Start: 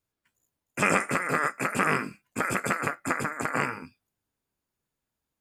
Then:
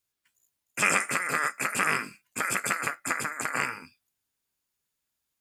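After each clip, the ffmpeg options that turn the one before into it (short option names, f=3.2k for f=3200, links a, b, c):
-af "tiltshelf=f=1.4k:g=-7,volume=-1dB"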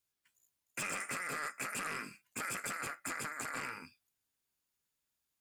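-af "alimiter=limit=-15dB:level=0:latency=1:release=31,acompressor=threshold=-32dB:ratio=2,asoftclip=type=tanh:threshold=-28dB,volume=-3.5dB"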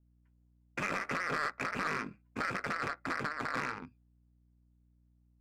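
-af "aeval=exprs='val(0)+0.0002*(sin(2*PI*60*n/s)+sin(2*PI*2*60*n/s)/2+sin(2*PI*3*60*n/s)/3+sin(2*PI*4*60*n/s)/4+sin(2*PI*5*60*n/s)/5)':c=same,adynamicsmooth=sensitivity=6:basefreq=640,volume=8dB"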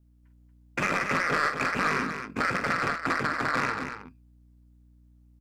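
-af "aecho=1:1:46.65|233.2:0.316|0.398,volume=7.5dB"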